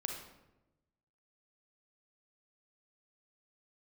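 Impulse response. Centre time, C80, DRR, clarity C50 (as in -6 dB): 37 ms, 7.0 dB, 2.0 dB, 3.5 dB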